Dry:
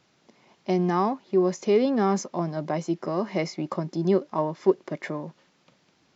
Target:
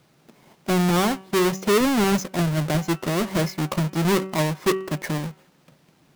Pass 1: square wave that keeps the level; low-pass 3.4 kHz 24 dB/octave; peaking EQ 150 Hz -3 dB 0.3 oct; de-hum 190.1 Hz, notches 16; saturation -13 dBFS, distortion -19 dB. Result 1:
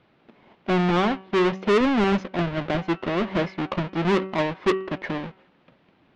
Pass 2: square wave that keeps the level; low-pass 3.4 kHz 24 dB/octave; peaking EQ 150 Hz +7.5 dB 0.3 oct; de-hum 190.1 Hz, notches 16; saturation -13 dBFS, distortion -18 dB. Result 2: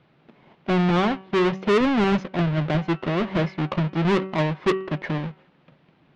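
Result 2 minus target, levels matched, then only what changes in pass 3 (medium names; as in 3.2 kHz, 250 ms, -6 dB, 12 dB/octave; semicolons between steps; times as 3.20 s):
4 kHz band -3.0 dB
remove: low-pass 3.4 kHz 24 dB/octave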